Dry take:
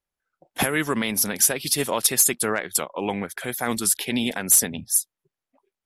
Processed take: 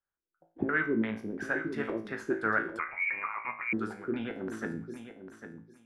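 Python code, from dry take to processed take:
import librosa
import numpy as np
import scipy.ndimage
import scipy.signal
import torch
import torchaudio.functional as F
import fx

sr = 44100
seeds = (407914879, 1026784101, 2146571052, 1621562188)

p1 = fx.filter_lfo_lowpass(x, sr, shape='square', hz=2.9, low_hz=350.0, high_hz=1500.0, q=4.8)
p2 = fx.comb_fb(p1, sr, f0_hz=55.0, decay_s=0.42, harmonics='all', damping=0.0, mix_pct=80)
p3 = p2 + fx.echo_feedback(p2, sr, ms=800, feedback_pct=16, wet_db=-10, dry=0)
p4 = fx.freq_invert(p3, sr, carrier_hz=2600, at=(2.79, 3.73))
y = p4 * librosa.db_to_amplitude(-3.0)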